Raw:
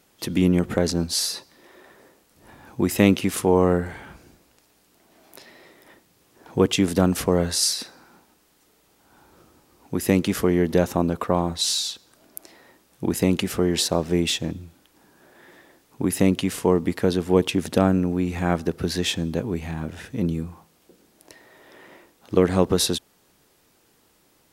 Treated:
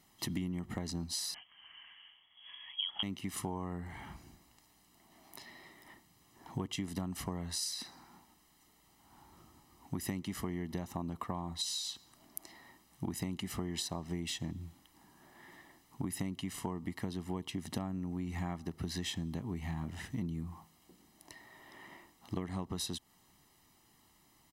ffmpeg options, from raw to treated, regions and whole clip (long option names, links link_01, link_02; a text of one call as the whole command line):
ffmpeg -i in.wav -filter_complex "[0:a]asettb=1/sr,asplit=3[link_01][link_02][link_03];[link_01]atrim=end=1.344[link_04];[link_02]atrim=start=1.34:end=3.03,asetpts=PTS-STARTPTS,afade=type=in:duration=0.004:curve=qsin,afade=type=out:start_time=1.686:duration=0.004:curve=qsin,asubboost=boost=11.5:cutoff=110,lowpass=frequency=2900:width_type=q:width=0.5098,lowpass=frequency=2900:width_type=q:width=0.6013,lowpass=frequency=2900:width_type=q:width=0.9,lowpass=frequency=2900:width_type=q:width=2.563,afreqshift=-3400[link_05];[link_03]atrim=start=3.026[link_06];[link_04][link_05]acrossfade=duration=0.004:curve1=hsin:curve2=qsin[link_07];[link_07][link_06]acrossfade=duration=0.004:curve1=qsin:curve2=hsin,aecho=1:1:1:0.7,acompressor=threshold=-27dB:ratio=10,volume=-7dB" out.wav